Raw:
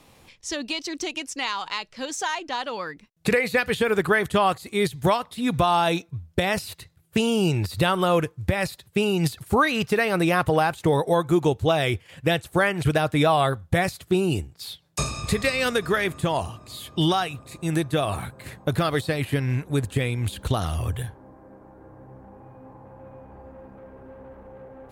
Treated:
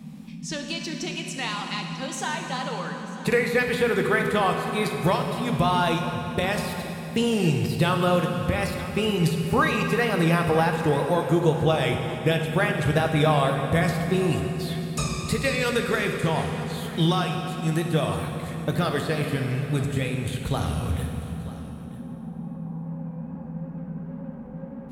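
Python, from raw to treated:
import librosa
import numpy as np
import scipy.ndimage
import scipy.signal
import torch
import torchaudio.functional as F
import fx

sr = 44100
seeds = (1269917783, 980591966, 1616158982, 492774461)

y = fx.dmg_noise_band(x, sr, seeds[0], low_hz=160.0, high_hz=250.0, level_db=-38.0)
y = fx.wow_flutter(y, sr, seeds[1], rate_hz=2.1, depth_cents=71.0)
y = y + 10.0 ** (-17.5 / 20.0) * np.pad(y, (int(943 * sr / 1000.0), 0))[:len(y)]
y = fx.rev_fdn(y, sr, rt60_s=3.5, lf_ratio=1.0, hf_ratio=0.8, size_ms=37.0, drr_db=2.5)
y = F.gain(torch.from_numpy(y), -3.0).numpy()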